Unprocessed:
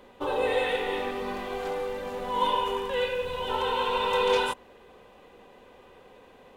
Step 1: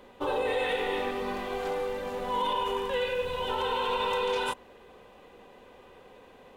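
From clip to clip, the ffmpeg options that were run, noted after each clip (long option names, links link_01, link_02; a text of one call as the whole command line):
ffmpeg -i in.wav -af "alimiter=limit=-20.5dB:level=0:latency=1:release=45" out.wav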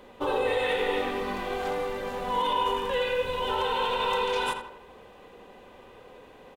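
ffmpeg -i in.wav -filter_complex "[0:a]asplit=2[link_01][link_02];[link_02]adelay=82,lowpass=frequency=3000:poles=1,volume=-7dB,asplit=2[link_03][link_04];[link_04]adelay=82,lowpass=frequency=3000:poles=1,volume=0.47,asplit=2[link_05][link_06];[link_06]adelay=82,lowpass=frequency=3000:poles=1,volume=0.47,asplit=2[link_07][link_08];[link_08]adelay=82,lowpass=frequency=3000:poles=1,volume=0.47,asplit=2[link_09][link_10];[link_10]adelay=82,lowpass=frequency=3000:poles=1,volume=0.47,asplit=2[link_11][link_12];[link_12]adelay=82,lowpass=frequency=3000:poles=1,volume=0.47[link_13];[link_01][link_03][link_05][link_07][link_09][link_11][link_13]amix=inputs=7:normalize=0,volume=2dB" out.wav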